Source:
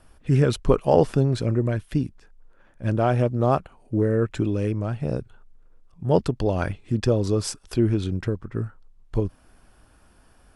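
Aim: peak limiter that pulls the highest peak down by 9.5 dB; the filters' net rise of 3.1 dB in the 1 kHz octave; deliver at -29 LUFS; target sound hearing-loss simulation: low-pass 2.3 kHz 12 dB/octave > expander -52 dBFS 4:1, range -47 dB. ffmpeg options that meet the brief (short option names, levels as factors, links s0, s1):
-af "equalizer=f=1000:t=o:g=4.5,alimiter=limit=0.251:level=0:latency=1,lowpass=2300,agate=range=0.00447:threshold=0.00251:ratio=4,volume=0.668"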